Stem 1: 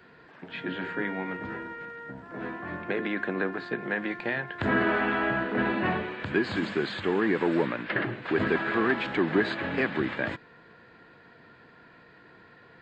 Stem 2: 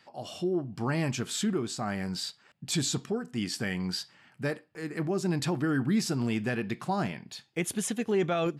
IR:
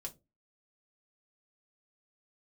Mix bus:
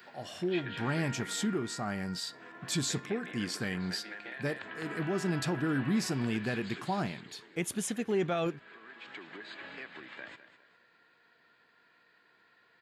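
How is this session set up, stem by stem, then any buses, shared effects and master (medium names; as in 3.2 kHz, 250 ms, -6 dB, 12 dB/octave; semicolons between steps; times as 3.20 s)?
6.63 s -2 dB -> 7.16 s -13.5 dB, 0.00 s, send -17 dB, echo send -12.5 dB, compression 6:1, threshold -28 dBFS, peak gain reduction 9.5 dB; tilt EQ +3.5 dB/octave; auto duck -15 dB, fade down 1.80 s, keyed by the second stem
-3.0 dB, 0.00 s, no send, no echo send, none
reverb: on, RT60 0.25 s, pre-delay 3 ms
echo: feedback delay 206 ms, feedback 36%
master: none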